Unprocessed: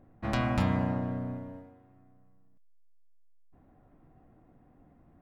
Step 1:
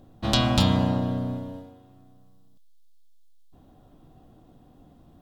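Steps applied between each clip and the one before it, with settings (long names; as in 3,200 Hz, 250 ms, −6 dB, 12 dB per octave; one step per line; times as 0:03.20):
high shelf with overshoot 2,700 Hz +8.5 dB, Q 3
level +6.5 dB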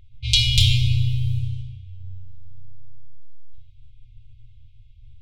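rectangular room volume 1,800 cubic metres, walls mixed, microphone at 1.8 metres
low-pass that shuts in the quiet parts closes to 2,600 Hz, open at −17 dBFS
brick-wall band-stop 120–2,100 Hz
level +6 dB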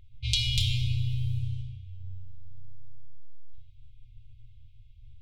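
downward compressor 2.5 to 1, threshold −21 dBFS, peak gain reduction 7 dB
level −4 dB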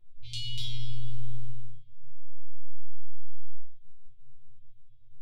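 resonators tuned to a chord A#2 fifth, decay 0.27 s
rectangular room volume 160 cubic metres, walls furnished, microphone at 0.95 metres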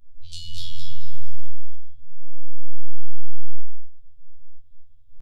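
phaser with its sweep stopped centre 820 Hz, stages 4
on a send: repeating echo 215 ms, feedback 29%, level −6.5 dB
on the sum: phases set to zero 84.1 Hz
level +6.5 dB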